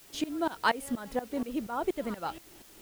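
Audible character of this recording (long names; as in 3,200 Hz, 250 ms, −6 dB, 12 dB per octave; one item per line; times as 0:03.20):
tremolo saw up 4.2 Hz, depth 95%
a quantiser's noise floor 10 bits, dither triangular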